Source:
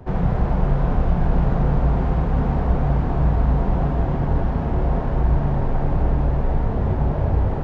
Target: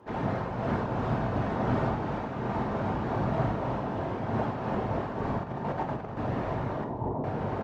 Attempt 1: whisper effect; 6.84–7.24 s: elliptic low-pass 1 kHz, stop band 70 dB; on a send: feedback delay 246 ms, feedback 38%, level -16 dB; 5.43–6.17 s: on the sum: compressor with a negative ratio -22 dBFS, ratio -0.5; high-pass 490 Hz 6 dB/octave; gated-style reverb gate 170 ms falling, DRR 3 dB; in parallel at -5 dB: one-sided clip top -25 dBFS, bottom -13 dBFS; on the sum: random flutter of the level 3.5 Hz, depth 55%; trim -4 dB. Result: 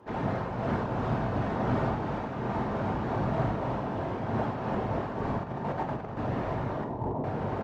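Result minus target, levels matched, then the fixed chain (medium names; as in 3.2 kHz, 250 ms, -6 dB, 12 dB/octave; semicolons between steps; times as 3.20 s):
one-sided clip: distortion +10 dB
whisper effect; 6.84–7.24 s: elliptic low-pass 1 kHz, stop band 70 dB; on a send: feedback delay 246 ms, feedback 38%, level -16 dB; 5.43–6.17 s: on the sum: compressor with a negative ratio -22 dBFS, ratio -0.5; high-pass 490 Hz 6 dB/octave; gated-style reverb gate 170 ms falling, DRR 3 dB; in parallel at -5 dB: one-sided clip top -17 dBFS, bottom -13 dBFS; on the sum: random flutter of the level 3.5 Hz, depth 55%; trim -4 dB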